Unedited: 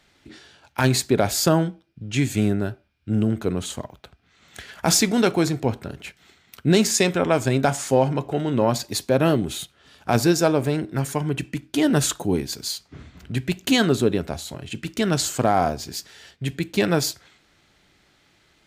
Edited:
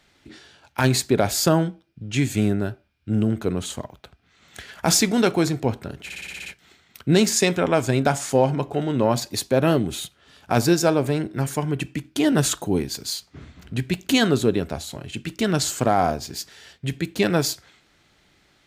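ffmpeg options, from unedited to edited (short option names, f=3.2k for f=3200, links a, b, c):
-filter_complex "[0:a]asplit=8[a][b][c][d][e][f][g][h];[a]atrim=end=6.102[i];[b]atrim=start=6.038:end=6.102[j];[c]atrim=start=6.038:end=6.102[k];[d]atrim=start=6.038:end=6.102[l];[e]atrim=start=6.038:end=6.102[m];[f]atrim=start=6.038:end=6.102[n];[g]atrim=start=6.038:end=6.102[o];[h]atrim=start=6.038[p];[i][j]acrossfade=d=0.004:c1=hsin:c2=hsin[q];[q][k]acrossfade=d=0.004:c1=hsin:c2=hsin[r];[r][l]acrossfade=d=0.004:c1=hsin:c2=hsin[s];[s][m]acrossfade=d=0.004:c1=hsin:c2=hsin[t];[t][n]acrossfade=d=0.004:c1=hsin:c2=hsin[u];[u][o]acrossfade=d=0.004:c1=hsin:c2=hsin[v];[v][p]acrossfade=d=0.004:c1=hsin:c2=hsin"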